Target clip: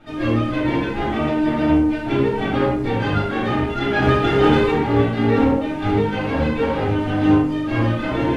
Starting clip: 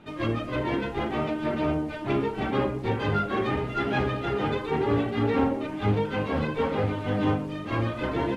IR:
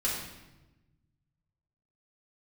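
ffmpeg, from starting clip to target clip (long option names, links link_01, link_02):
-filter_complex "[0:a]asettb=1/sr,asplit=3[link_01][link_02][link_03];[link_01]atrim=end=4.024[link_04];[link_02]atrim=start=4.02:end=4.72,asetpts=PTS-STARTPTS,afade=type=in:duration=0.004:curve=qsin,afade=type=out:start_time=0.696:duration=0.004:curve=qsin,acontrast=24[link_05];[link_03]atrim=start=4.716[link_06];[link_04][link_05]acrossfade=duration=0.004:curve1=hsin:curve2=qsin[link_07];[link_07][link_06]acrossfade=duration=0.004:curve1=qsin:curve2=hsin,asoftclip=type=hard:threshold=-15.5dB[link_08];[1:a]atrim=start_sample=2205,afade=type=out:start_time=0.19:duration=0.01,atrim=end_sample=8820,asetrate=52920,aresample=44100[link_09];[link_08][link_09]afir=irnorm=-1:irlink=0,volume=1.5dB"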